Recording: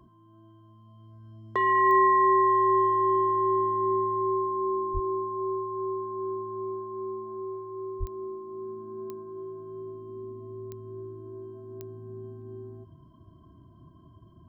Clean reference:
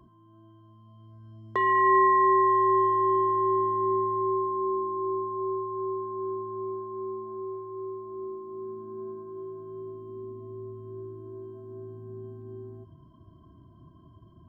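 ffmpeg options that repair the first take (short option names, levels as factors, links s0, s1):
-filter_complex "[0:a]adeclick=t=4,asplit=3[s0][s1][s2];[s0]afade=t=out:st=4.93:d=0.02[s3];[s1]highpass=f=140:w=0.5412,highpass=f=140:w=1.3066,afade=t=in:st=4.93:d=0.02,afade=t=out:st=5.05:d=0.02[s4];[s2]afade=t=in:st=5.05:d=0.02[s5];[s3][s4][s5]amix=inputs=3:normalize=0,asplit=3[s6][s7][s8];[s6]afade=t=out:st=7.99:d=0.02[s9];[s7]highpass=f=140:w=0.5412,highpass=f=140:w=1.3066,afade=t=in:st=7.99:d=0.02,afade=t=out:st=8.11:d=0.02[s10];[s8]afade=t=in:st=8.11:d=0.02[s11];[s9][s10][s11]amix=inputs=3:normalize=0"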